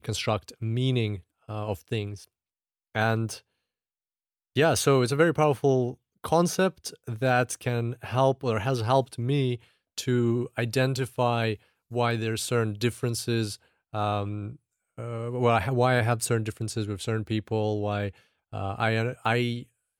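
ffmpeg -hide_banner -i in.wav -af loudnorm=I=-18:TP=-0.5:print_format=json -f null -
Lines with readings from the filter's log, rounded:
"input_i" : "-27.3",
"input_tp" : "-9.5",
"input_lra" : "3.8",
"input_thresh" : "-37.7",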